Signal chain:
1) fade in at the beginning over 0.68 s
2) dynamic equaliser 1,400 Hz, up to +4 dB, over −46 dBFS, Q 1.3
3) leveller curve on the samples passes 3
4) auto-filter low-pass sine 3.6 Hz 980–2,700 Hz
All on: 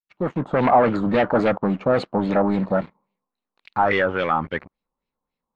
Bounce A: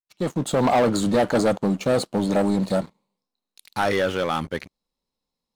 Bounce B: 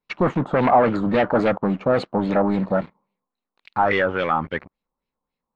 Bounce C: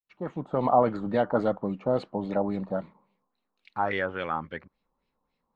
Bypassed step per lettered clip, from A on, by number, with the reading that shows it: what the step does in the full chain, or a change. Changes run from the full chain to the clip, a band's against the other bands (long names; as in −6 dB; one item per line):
4, 4 kHz band +6.5 dB
1, change in momentary loudness spread −2 LU
3, change in crest factor +5.0 dB